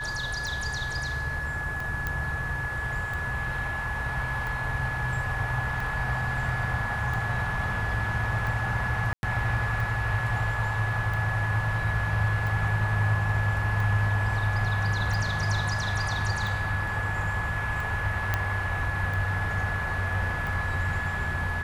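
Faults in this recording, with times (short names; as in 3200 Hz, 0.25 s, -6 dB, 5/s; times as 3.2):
tick 45 rpm
tone 1700 Hz -31 dBFS
2.07 pop -15 dBFS
9.13–9.23 gap 0.101 s
18.34 pop -11 dBFS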